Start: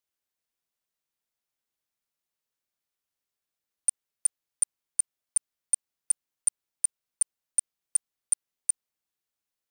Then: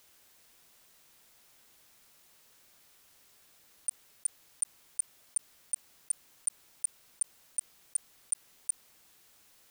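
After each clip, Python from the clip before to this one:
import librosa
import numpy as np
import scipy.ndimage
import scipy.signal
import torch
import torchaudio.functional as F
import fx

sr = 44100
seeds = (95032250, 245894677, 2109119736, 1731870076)

y = fx.env_flatten(x, sr, amount_pct=50)
y = F.gain(torch.from_numpy(y), -7.5).numpy()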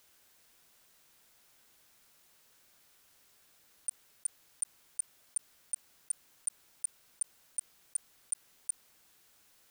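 y = fx.peak_eq(x, sr, hz=1500.0, db=2.5, octaves=0.23)
y = F.gain(torch.from_numpy(y), -3.0).numpy()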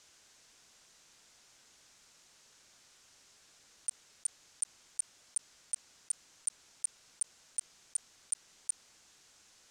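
y = fx.lowpass_res(x, sr, hz=6700.0, q=1.8)
y = F.gain(torch.from_numpy(y), 3.0).numpy()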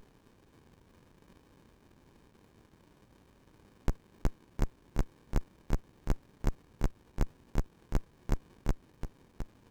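y = x + 10.0 ** (-9.0 / 20.0) * np.pad(x, (int(712 * sr / 1000.0), 0))[:len(x)]
y = fx.running_max(y, sr, window=65)
y = F.gain(torch.from_numpy(y), 8.0).numpy()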